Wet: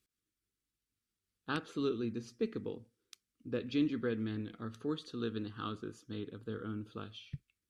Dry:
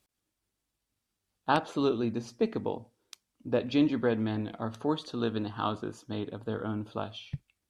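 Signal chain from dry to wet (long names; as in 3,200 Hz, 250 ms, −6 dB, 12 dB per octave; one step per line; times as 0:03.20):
flat-topped bell 760 Hz −14.5 dB 1 octave
level −6.5 dB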